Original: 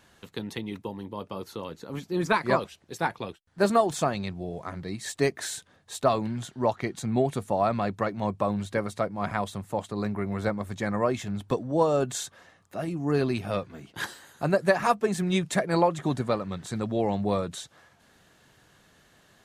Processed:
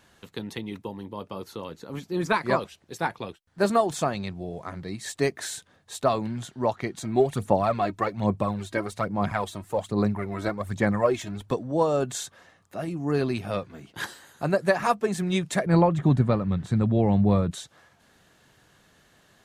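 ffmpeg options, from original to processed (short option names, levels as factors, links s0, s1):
-filter_complex "[0:a]asplit=3[s0][s1][s2];[s0]afade=t=out:st=7:d=0.02[s3];[s1]aphaser=in_gain=1:out_gain=1:delay=3.2:decay=0.56:speed=1.2:type=sinusoidal,afade=t=in:st=7:d=0.02,afade=t=out:st=11.46:d=0.02[s4];[s2]afade=t=in:st=11.46:d=0.02[s5];[s3][s4][s5]amix=inputs=3:normalize=0,asettb=1/sr,asplit=3[s6][s7][s8];[s6]atrim=end=15.664[s9];[s7]atrim=start=15.66:end=17.51,asetpts=PTS-STARTPTS,afade=t=in:d=0.004:c=qsin,afade=t=out:st=1.846:d=0.004:c=qsin,bass=f=250:g=12,treble=f=4000:g=-9[s10];[s8]atrim=start=17.506[s11];[s9][s10]acrossfade=d=0.004:c1=hsin:c2=qsin[s12];[s12][s11]acrossfade=d=0.004:c1=qsin:c2=hsin"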